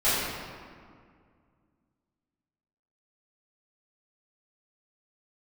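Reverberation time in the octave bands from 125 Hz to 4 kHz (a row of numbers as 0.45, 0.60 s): 2.8, 2.7, 2.1, 2.0, 1.7, 1.2 s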